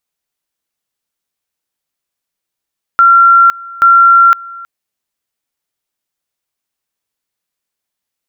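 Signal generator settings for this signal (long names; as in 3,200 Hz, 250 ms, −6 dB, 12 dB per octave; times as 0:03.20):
tone at two levels in turn 1,370 Hz −2.5 dBFS, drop 23 dB, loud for 0.51 s, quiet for 0.32 s, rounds 2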